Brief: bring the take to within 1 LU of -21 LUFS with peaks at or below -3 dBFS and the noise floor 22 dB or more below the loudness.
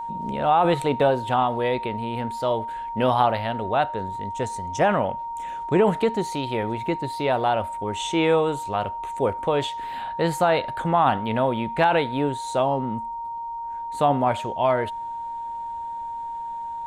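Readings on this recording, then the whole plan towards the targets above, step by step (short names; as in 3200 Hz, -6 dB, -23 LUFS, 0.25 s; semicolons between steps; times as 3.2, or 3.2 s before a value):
steady tone 930 Hz; tone level -29 dBFS; loudness -24.0 LUFS; peak -6.5 dBFS; loudness target -21.0 LUFS
-> notch 930 Hz, Q 30; gain +3 dB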